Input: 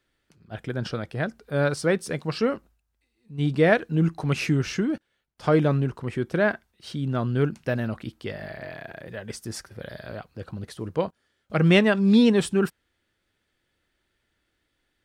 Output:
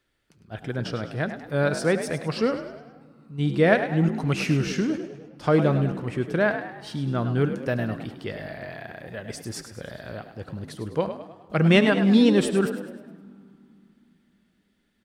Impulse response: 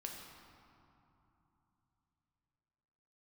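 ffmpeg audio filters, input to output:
-filter_complex "[0:a]asplit=6[s0][s1][s2][s3][s4][s5];[s1]adelay=103,afreqshift=54,volume=0.299[s6];[s2]adelay=206,afreqshift=108,volume=0.138[s7];[s3]adelay=309,afreqshift=162,volume=0.0631[s8];[s4]adelay=412,afreqshift=216,volume=0.0292[s9];[s5]adelay=515,afreqshift=270,volume=0.0133[s10];[s0][s6][s7][s8][s9][s10]amix=inputs=6:normalize=0,asplit=2[s11][s12];[1:a]atrim=start_sample=2205,adelay=73[s13];[s12][s13]afir=irnorm=-1:irlink=0,volume=0.178[s14];[s11][s14]amix=inputs=2:normalize=0"

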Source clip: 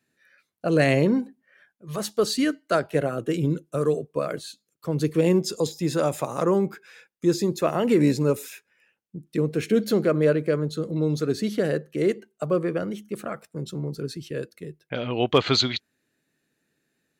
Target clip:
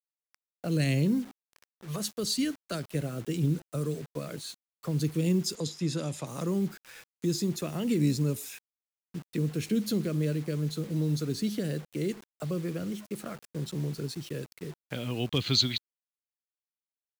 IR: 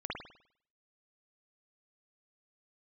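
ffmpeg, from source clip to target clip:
-filter_complex "[0:a]acrossover=split=260|2900[s0][s1][s2];[s1]acompressor=threshold=0.0126:ratio=6[s3];[s0][s3][s2]amix=inputs=3:normalize=0,acrusher=bits=7:mix=0:aa=0.000001,asettb=1/sr,asplit=3[s4][s5][s6];[s4]atrim=end=5.554[s7];[s5]atrim=start=5.55:end=6.27,asetpts=PTS-STARTPTS,afade=t=in:d=0.004:c=qsin,afade=t=out:st=0.716:d=0.004:c=qsin,highpass=100,lowpass=7500[s8];[s6]atrim=start=6.266[s9];[s7][s8]acrossfade=d=0.004:c1=hsin:c2=qsin[s10];[s10][s9]acrossfade=d=0.004:c1=qsin:c2=hsin,volume=0.891"

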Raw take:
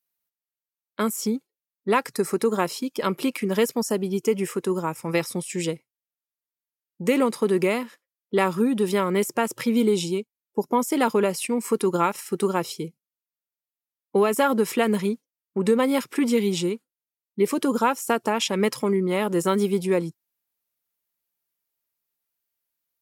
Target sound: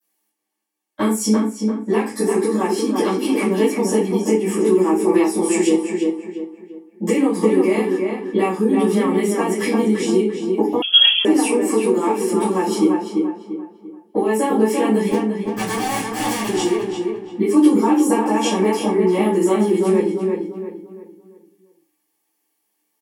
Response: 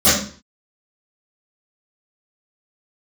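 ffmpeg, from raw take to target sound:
-filter_complex "[0:a]highpass=f=190:w=0.5412,highpass=f=190:w=1.3066,acompressor=threshold=0.0251:ratio=8,flanger=delay=2.6:depth=2.3:regen=-77:speed=0.18:shape=sinusoidal,asettb=1/sr,asplit=3[s0][s1][s2];[s0]atrim=end=15.114[s3];[s1]atrim=start=15.11:end=16.47,asetpts=PTS-STARTPTS,afade=t=in:d=0.004:c=qsin,afade=t=out:st=1.356:d=0.004:c=qsin,aeval=exprs='(mod(70.8*val(0)+1,2)-1)/70.8':c=same[s4];[s2]atrim=start=16.466[s5];[s3][s4]acrossfade=d=0.004:c1=hsin:c2=qsin[s6];[s6][s5]acrossfade=d=0.004:c1=qsin:c2=hsin,asplit=2[s7][s8];[s8]adelay=343,lowpass=f=2400:p=1,volume=0.668,asplit=2[s9][s10];[s10]adelay=343,lowpass=f=2400:p=1,volume=0.38,asplit=2[s11][s12];[s12]adelay=343,lowpass=f=2400:p=1,volume=0.38,asplit=2[s13][s14];[s14]adelay=343,lowpass=f=2400:p=1,volume=0.38,asplit=2[s15][s16];[s16]adelay=343,lowpass=f=2400:p=1,volume=0.38[s17];[s7][s9][s11][s13][s15][s17]amix=inputs=6:normalize=0[s18];[1:a]atrim=start_sample=2205,asetrate=66150,aresample=44100[s19];[s18][s19]afir=irnorm=-1:irlink=0,asettb=1/sr,asplit=3[s20][s21][s22];[s20]atrim=end=10.824[s23];[s21]atrim=start=10.82:end=11.25,asetpts=PTS-STARTPTS,afade=t=in:d=0.004:c=qsin,afade=t=out:st=0.426:d=0.004:c=qsin,lowpass=f=3100:t=q:w=0.5098,lowpass=f=3100:t=q:w=0.6013,lowpass=f=3100:t=q:w=0.9,lowpass=f=3100:t=q:w=2.563,afreqshift=-3600[s24];[s22]atrim=start=11.246[s25];[s23][s24]acrossfade=d=0.004:c1=hsin:c2=qsin[s26];[s26][s25]acrossfade=d=0.004:c1=qsin:c2=hsin,volume=0.708"

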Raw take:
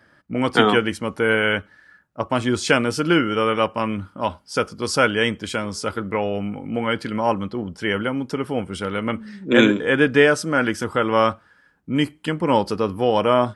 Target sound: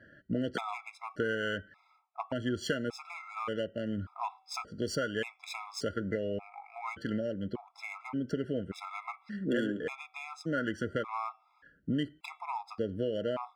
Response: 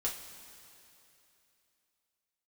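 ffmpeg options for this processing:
-af "acompressor=threshold=0.0355:ratio=6,bandreject=f=381.7:t=h:w=4,bandreject=f=763.4:t=h:w=4,bandreject=f=1145.1:t=h:w=4,bandreject=f=1526.8:t=h:w=4,bandreject=f=1908.5:t=h:w=4,bandreject=f=2290.2:t=h:w=4,bandreject=f=2671.9:t=h:w=4,bandreject=f=3053.6:t=h:w=4,bandreject=f=3435.3:t=h:w=4,bandreject=f=3817:t=h:w=4,bandreject=f=4198.7:t=h:w=4,bandreject=f=4580.4:t=h:w=4,bandreject=f=4962.1:t=h:w=4,bandreject=f=5343.8:t=h:w=4,bandreject=f=5725.5:t=h:w=4,bandreject=f=6107.2:t=h:w=4,bandreject=f=6488.9:t=h:w=4,bandreject=f=6870.6:t=h:w=4,bandreject=f=7252.3:t=h:w=4,bandreject=f=7634:t=h:w=4,bandreject=f=8015.7:t=h:w=4,bandreject=f=8397.4:t=h:w=4,bandreject=f=8779.1:t=h:w=4,bandreject=f=9160.8:t=h:w=4,bandreject=f=9542.5:t=h:w=4,bandreject=f=9924.2:t=h:w=4,adynamicsmooth=sensitivity=6.5:basefreq=3600,afftfilt=real='re*gt(sin(2*PI*0.86*pts/sr)*(1-2*mod(floor(b*sr/1024/680),2)),0)':imag='im*gt(sin(2*PI*0.86*pts/sr)*(1-2*mod(floor(b*sr/1024/680),2)),0)':win_size=1024:overlap=0.75"

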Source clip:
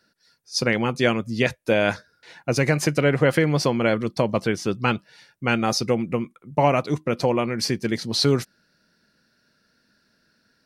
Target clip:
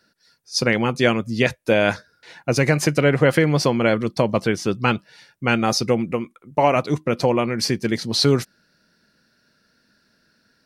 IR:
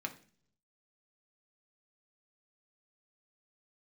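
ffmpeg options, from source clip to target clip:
-filter_complex "[0:a]asettb=1/sr,asplit=3[s0][s1][s2];[s0]atrim=end=6.114[s3];[s1]atrim=start=6.11:end=6.76,asetpts=PTS-STARTPTS,afade=t=in:d=0.004:c=qsin,afade=t=out:st=0.646:d=0.004:c=qsin,equalizer=f=150:w=1.2:g=-7.5[s4];[s2]atrim=start=6.756[s5];[s3][s4]acrossfade=d=0.004:c1=hsin:c2=qsin[s6];[s6][s5]acrossfade=d=0.004:c1=qsin:c2=hsin,volume=1.33"

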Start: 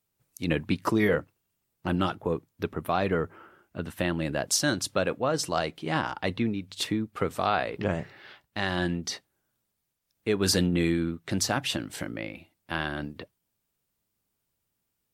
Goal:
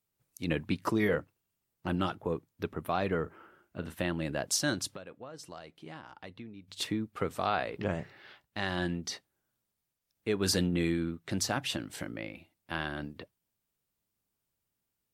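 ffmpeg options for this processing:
-filter_complex "[0:a]asettb=1/sr,asplit=3[s0][s1][s2];[s0]atrim=end=3.224[s3];[s1]atrim=start=3.22:end=3.95,asetpts=PTS-STARTPTS,afade=t=in:d=0.004:c=qsin,afade=t=out:st=0.726:d=0.004:c=qsin,asplit=2[s4][s5];[s5]adelay=37,volume=0.266[s6];[s4][s6]amix=inputs=2:normalize=0,atrim=end_sample=32193[s7];[s2]atrim=start=3.946[s8];[s3][s7]acrossfade=d=0.004:c1=hsin:c2=qsin[s9];[s9][s8]acrossfade=d=0.004:c1=qsin:c2=hsin,asettb=1/sr,asplit=3[s10][s11][s12];[s10]atrim=end=4.894[s13];[s11]atrim=start=4.89:end=6.68,asetpts=PTS-STARTPTS,afade=t=in:d=0.004:c=qsin,afade=t=out:st=1.786:d=0.004:c=qsin,acompressor=threshold=0.00891:ratio=4[s14];[s12]atrim=start=6.676[s15];[s13][s14]acrossfade=d=0.004:c1=hsin:c2=qsin[s16];[s16][s15]acrossfade=d=0.004:c1=qsin:c2=hsin,volume=0.596"

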